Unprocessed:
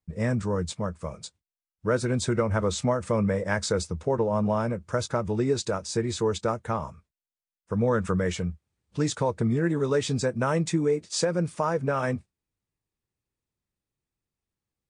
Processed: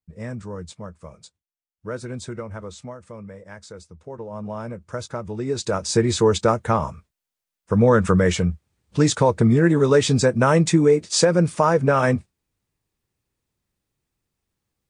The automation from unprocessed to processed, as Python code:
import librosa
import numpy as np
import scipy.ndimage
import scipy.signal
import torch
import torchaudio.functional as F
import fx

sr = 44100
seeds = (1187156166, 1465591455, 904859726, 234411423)

y = fx.gain(x, sr, db=fx.line((2.17, -6.0), (3.19, -14.0), (3.84, -14.0), (4.79, -3.0), (5.39, -3.0), (5.87, 8.5)))